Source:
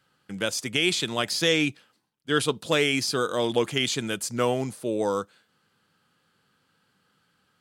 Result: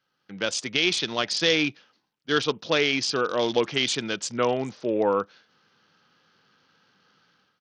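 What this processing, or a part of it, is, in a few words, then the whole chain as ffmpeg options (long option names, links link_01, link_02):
Bluetooth headset: -af "highpass=frequency=210:poles=1,dynaudnorm=framelen=130:gausssize=5:maxgain=13dB,aresample=16000,aresample=44100,volume=-7.5dB" -ar 48000 -c:a sbc -b:a 64k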